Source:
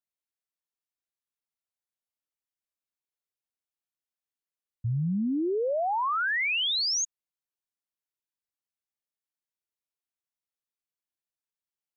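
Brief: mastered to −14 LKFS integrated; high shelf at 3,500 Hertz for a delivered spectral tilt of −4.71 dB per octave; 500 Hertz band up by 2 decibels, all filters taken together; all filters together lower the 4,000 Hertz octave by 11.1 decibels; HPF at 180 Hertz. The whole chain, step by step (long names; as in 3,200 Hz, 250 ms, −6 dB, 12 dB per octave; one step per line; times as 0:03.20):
high-pass filter 180 Hz
parametric band 500 Hz +3 dB
high-shelf EQ 3,500 Hz −8.5 dB
parametric band 4,000 Hz −9 dB
level +15.5 dB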